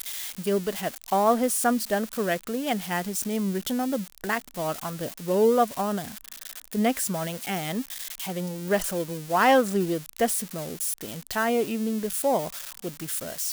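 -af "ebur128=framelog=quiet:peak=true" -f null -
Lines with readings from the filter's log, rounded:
Integrated loudness:
  I:         -26.6 LUFS
  Threshold: -36.7 LUFS
Loudness range:
  LRA:         3.5 LU
  Threshold: -46.6 LUFS
  LRA low:   -28.7 LUFS
  LRA high:  -25.3 LUFS
True peak:
  Peak:       -8.4 dBFS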